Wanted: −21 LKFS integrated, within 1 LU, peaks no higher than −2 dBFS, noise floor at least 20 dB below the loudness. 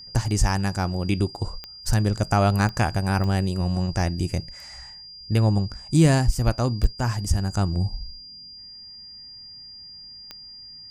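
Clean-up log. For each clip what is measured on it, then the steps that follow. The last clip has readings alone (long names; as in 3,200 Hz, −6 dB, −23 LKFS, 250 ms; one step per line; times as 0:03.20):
number of clicks 5; interfering tone 4,800 Hz; level of the tone −40 dBFS; integrated loudness −23.5 LKFS; sample peak −6.0 dBFS; target loudness −21.0 LKFS
→ click removal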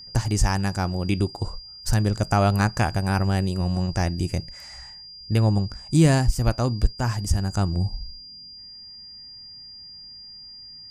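number of clicks 0; interfering tone 4,800 Hz; level of the tone −40 dBFS
→ notch filter 4,800 Hz, Q 30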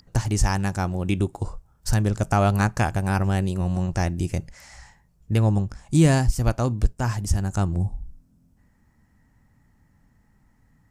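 interfering tone none found; integrated loudness −24.0 LKFS; sample peak −6.0 dBFS; target loudness −21.0 LKFS
→ level +3 dB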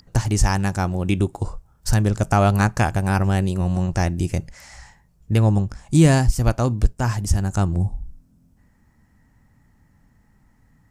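integrated loudness −21.0 LKFS; sample peak −3.0 dBFS; background noise floor −59 dBFS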